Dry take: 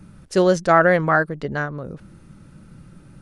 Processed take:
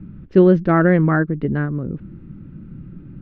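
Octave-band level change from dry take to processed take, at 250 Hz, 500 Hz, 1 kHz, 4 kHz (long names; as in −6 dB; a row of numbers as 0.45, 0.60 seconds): +8.0 dB, +0.5 dB, −5.0 dB, below −10 dB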